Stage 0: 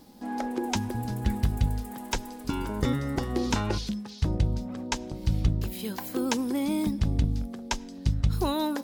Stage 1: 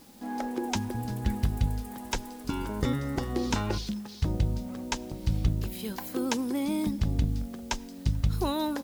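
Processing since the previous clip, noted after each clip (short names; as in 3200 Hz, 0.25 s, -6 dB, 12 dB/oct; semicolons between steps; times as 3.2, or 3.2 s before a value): in parallel at -5 dB: requantised 8-bit, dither triangular; on the sum: outdoor echo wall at 75 m, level -29 dB; gain -5.5 dB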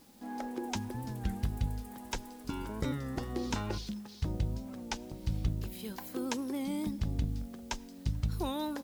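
record warp 33 1/3 rpm, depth 100 cents; gain -6 dB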